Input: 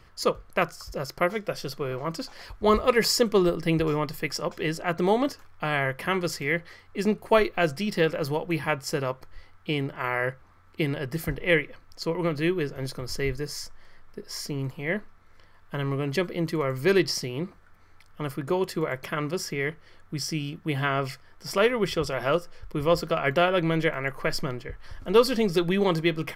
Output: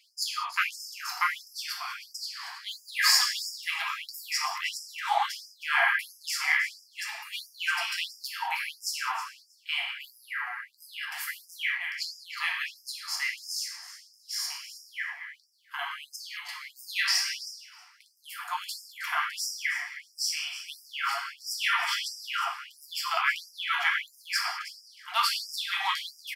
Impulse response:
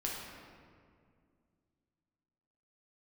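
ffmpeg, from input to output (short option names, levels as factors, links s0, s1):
-filter_complex "[0:a]asettb=1/sr,asplit=3[s0][s1][s2];[s0]atrim=end=16.164[s3];[s1]atrim=start=16.16:end=16.82,asetpts=PTS-STARTPTS,afade=t=in:d=0.004:c=qsin,afade=t=out:st=0.656:d=0.004:c=qsin,acompressor=threshold=0.0398:ratio=6[s4];[s2]atrim=start=16.816[s5];[s3][s4]acrossfade=d=0.004:c1=hsin:c2=qsin[s6];[s6][s5]acrossfade=d=0.004:c1=qsin:c2=hsin,aecho=1:1:317|634:0.2|0.0319,acontrast=62[s7];[1:a]atrim=start_sample=2205,afade=t=out:st=0.26:d=0.01,atrim=end_sample=11907[s8];[s7][s8]afir=irnorm=-1:irlink=0,afftfilt=real='re*gte(b*sr/1024,680*pow(4900/680,0.5+0.5*sin(2*PI*1.5*pts/sr)))':imag='im*gte(b*sr/1024,680*pow(4900/680,0.5+0.5*sin(2*PI*1.5*pts/sr)))':win_size=1024:overlap=0.75,volume=0.708"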